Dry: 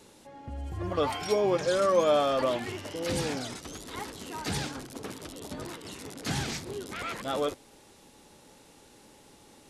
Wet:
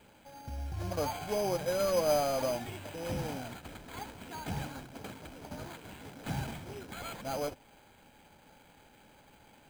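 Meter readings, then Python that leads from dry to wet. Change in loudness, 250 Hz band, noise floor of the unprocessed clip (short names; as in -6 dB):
-5.0 dB, -5.5 dB, -56 dBFS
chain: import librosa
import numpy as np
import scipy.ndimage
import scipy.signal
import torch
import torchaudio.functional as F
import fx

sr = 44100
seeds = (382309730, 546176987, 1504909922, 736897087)

y = fx.cvsd(x, sr, bps=16000)
y = fx.dynamic_eq(y, sr, hz=1700.0, q=1.1, threshold_db=-43.0, ratio=4.0, max_db=-5)
y = y + 0.44 * np.pad(y, (int(1.3 * sr / 1000.0), 0))[:len(y)]
y = np.repeat(y[::8], 8)[:len(y)]
y = F.gain(torch.from_numpy(y), -3.5).numpy()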